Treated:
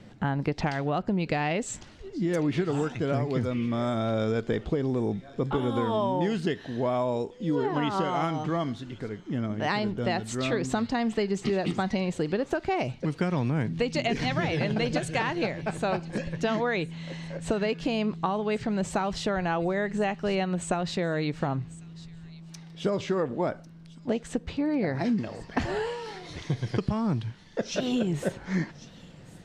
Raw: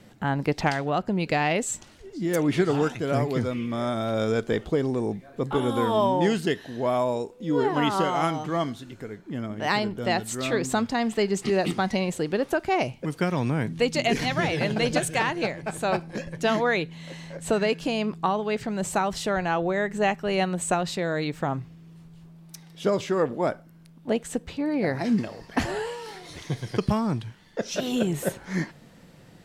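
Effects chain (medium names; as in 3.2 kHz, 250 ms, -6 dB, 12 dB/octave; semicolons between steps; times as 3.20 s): low-pass 6 kHz 12 dB/octave; bass shelf 230 Hz +5 dB; compression, threshold -23 dBFS, peak gain reduction 8.5 dB; on a send: feedback echo behind a high-pass 1098 ms, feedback 31%, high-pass 3.5 kHz, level -14.5 dB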